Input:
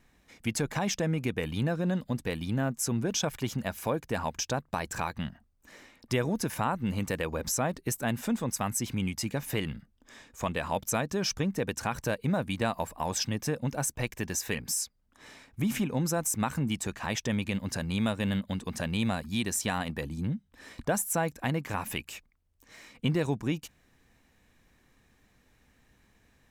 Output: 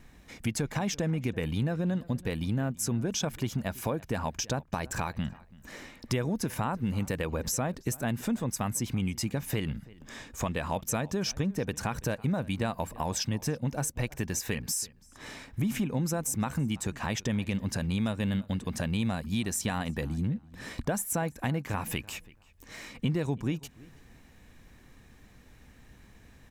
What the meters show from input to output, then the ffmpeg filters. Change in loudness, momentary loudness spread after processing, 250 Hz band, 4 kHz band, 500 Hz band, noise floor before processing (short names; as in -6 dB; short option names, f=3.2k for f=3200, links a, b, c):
-0.5 dB, 8 LU, 0.0 dB, -1.5 dB, -2.0 dB, -67 dBFS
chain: -filter_complex "[0:a]lowshelf=f=250:g=5.5,acompressor=threshold=-41dB:ratio=2,asplit=2[a][b];[b]adelay=332,lowpass=f=3.4k:p=1,volume=-21.5dB,asplit=2[c][d];[d]adelay=332,lowpass=f=3.4k:p=1,volume=0.21[e];[a][c][e]amix=inputs=3:normalize=0,volume=6.5dB"